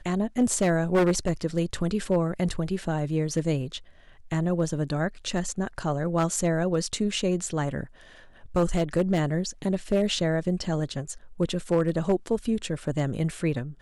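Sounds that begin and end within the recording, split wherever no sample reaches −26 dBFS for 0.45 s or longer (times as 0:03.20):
0:04.32–0:07.83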